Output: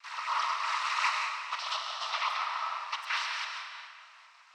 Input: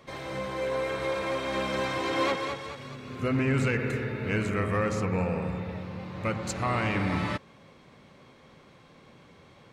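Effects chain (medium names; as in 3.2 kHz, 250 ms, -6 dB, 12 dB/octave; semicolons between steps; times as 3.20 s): steep high-pass 450 Hz 96 dB/octave; noise-vocoded speech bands 12; wide varispeed 2.14×; distance through air 120 m; on a send at -2 dB: reverberation RT60 1.8 s, pre-delay 95 ms; on the sum: random flutter of the level, depth 50%; trim +2 dB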